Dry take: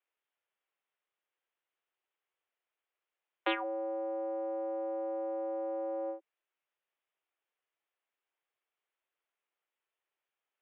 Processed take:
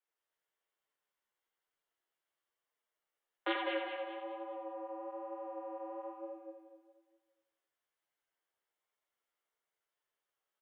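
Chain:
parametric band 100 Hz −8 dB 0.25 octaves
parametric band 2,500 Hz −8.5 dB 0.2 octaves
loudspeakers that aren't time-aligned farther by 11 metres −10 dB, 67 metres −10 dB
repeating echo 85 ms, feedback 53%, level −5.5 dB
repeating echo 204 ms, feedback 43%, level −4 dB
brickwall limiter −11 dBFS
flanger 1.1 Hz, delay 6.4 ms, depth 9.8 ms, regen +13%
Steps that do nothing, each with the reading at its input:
parametric band 100 Hz: nothing at its input below 300 Hz
brickwall limiter −11 dBFS: peak of its input −19.5 dBFS

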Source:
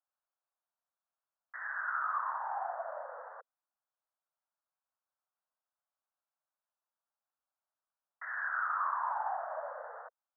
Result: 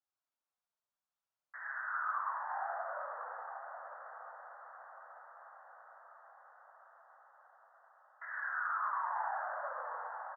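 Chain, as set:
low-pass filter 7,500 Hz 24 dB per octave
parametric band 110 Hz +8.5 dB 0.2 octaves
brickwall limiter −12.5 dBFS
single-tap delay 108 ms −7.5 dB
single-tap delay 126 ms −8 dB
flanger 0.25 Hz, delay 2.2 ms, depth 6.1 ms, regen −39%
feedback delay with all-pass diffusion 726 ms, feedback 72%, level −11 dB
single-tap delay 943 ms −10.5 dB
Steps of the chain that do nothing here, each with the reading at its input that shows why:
low-pass filter 7,500 Hz: nothing at its input above 2,000 Hz
parametric band 110 Hz: nothing at its input below 430 Hz
brickwall limiter −12.5 dBFS: peak of its input −22.5 dBFS

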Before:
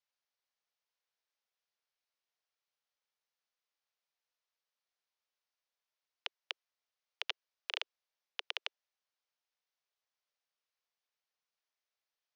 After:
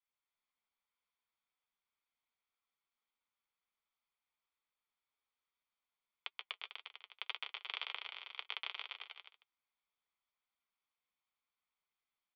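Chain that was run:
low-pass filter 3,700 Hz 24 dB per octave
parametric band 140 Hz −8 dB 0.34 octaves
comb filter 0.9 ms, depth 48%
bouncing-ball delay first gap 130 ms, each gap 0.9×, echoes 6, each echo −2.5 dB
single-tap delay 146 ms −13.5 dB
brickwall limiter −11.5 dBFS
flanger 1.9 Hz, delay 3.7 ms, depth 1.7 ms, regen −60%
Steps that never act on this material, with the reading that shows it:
parametric band 140 Hz: nothing at its input below 340 Hz
brickwall limiter −11.5 dBFS: peak of its input −17.0 dBFS

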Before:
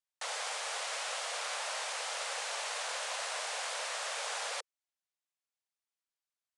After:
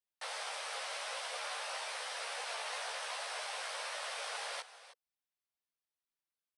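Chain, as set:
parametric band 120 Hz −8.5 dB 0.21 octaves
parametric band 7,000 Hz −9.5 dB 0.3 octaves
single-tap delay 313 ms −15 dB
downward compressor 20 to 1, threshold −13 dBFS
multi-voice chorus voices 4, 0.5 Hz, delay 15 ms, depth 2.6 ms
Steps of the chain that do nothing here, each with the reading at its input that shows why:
parametric band 120 Hz: nothing at its input below 360 Hz
downward compressor, threshold −13 dBFS: peak of its input −25.5 dBFS

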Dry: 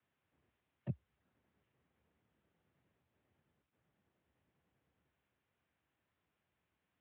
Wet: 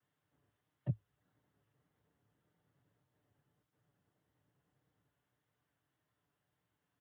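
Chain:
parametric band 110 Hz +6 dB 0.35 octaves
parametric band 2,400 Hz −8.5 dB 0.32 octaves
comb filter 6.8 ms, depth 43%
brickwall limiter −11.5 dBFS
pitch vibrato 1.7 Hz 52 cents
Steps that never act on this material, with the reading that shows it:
brickwall limiter −11.5 dBFS: peak of its input −23.5 dBFS

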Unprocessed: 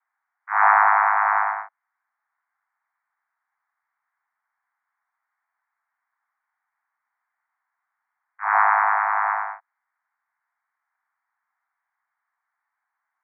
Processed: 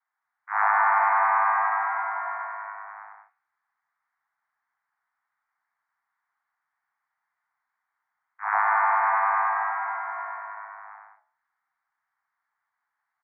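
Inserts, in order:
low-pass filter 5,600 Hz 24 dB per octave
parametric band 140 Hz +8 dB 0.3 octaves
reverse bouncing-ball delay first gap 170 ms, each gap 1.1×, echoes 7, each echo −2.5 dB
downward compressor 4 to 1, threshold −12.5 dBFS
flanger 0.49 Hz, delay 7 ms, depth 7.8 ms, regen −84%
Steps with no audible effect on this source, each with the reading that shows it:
low-pass filter 5,600 Hz: nothing at its input above 2,400 Hz
parametric band 140 Hz: nothing at its input below 640 Hz

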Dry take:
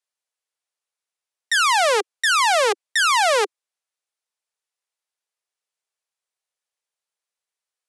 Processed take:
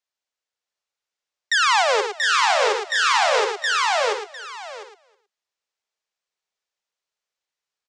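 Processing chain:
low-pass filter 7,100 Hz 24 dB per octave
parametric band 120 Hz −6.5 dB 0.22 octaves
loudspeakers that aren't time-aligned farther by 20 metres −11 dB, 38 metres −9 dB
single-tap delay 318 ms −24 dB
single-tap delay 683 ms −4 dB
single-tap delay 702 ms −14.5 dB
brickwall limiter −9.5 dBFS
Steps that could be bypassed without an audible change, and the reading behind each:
parametric band 120 Hz: nothing at its input below 340 Hz

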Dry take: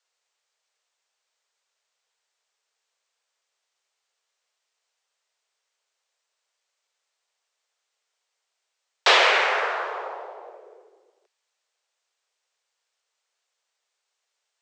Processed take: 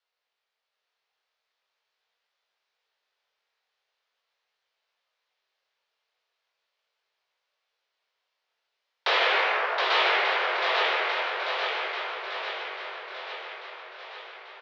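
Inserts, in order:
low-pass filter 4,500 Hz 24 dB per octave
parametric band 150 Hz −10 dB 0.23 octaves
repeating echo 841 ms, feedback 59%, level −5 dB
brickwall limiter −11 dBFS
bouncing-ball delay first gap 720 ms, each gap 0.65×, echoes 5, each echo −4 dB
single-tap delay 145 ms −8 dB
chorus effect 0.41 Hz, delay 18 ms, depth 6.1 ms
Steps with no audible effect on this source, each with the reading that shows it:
parametric band 150 Hz: nothing at its input below 300 Hz

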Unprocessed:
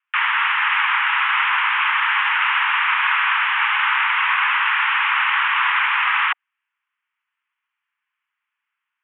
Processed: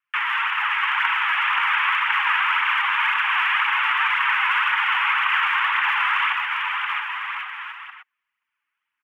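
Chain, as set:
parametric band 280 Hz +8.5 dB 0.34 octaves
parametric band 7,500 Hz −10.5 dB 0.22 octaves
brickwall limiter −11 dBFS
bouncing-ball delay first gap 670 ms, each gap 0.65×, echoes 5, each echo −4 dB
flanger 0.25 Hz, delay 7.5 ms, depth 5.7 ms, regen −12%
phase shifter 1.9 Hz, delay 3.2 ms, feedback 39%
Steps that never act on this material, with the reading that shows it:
parametric band 280 Hz: nothing at its input below 680 Hz
parametric band 7,500 Hz: nothing at its input above 3,600 Hz

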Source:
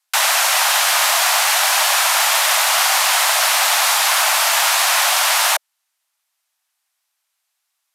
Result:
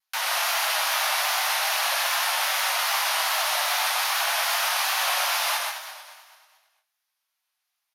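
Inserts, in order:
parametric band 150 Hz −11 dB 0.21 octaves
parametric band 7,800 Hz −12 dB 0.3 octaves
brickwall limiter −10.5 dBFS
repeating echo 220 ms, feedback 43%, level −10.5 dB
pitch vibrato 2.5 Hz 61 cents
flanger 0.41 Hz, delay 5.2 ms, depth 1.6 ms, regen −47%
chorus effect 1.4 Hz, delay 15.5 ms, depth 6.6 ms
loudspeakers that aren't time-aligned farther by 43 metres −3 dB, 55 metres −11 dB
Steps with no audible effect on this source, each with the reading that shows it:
parametric band 150 Hz: nothing at its input below 480 Hz

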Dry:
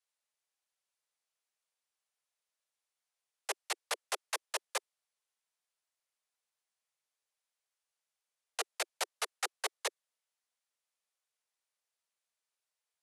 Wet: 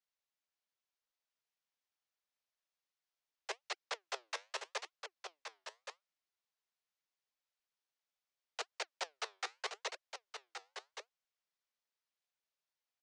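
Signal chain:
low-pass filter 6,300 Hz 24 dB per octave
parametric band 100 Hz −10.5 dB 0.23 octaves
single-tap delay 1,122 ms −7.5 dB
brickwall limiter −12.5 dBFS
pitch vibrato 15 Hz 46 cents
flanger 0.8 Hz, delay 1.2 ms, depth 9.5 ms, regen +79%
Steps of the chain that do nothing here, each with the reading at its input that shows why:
parametric band 100 Hz: nothing at its input below 300 Hz
brickwall limiter −12.5 dBFS: peak of its input −20.0 dBFS

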